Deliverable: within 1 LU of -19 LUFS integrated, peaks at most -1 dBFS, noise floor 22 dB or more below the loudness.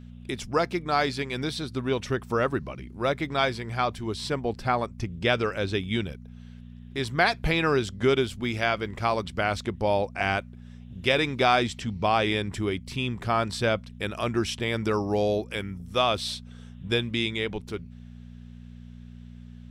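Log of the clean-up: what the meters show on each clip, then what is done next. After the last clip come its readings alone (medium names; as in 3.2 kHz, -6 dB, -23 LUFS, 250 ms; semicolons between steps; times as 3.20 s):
hum 60 Hz; highest harmonic 240 Hz; hum level -41 dBFS; loudness -27.0 LUFS; peak level -7.5 dBFS; loudness target -19.0 LUFS
-> de-hum 60 Hz, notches 4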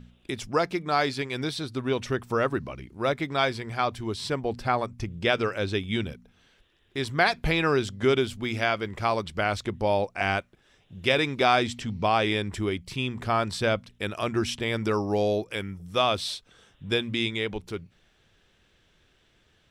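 hum not found; loudness -27.0 LUFS; peak level -8.0 dBFS; loudness target -19.0 LUFS
-> trim +8 dB; peak limiter -1 dBFS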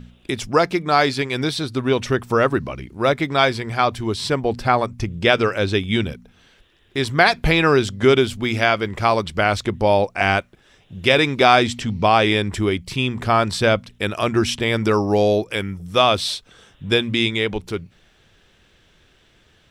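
loudness -19.0 LUFS; peak level -1.0 dBFS; noise floor -57 dBFS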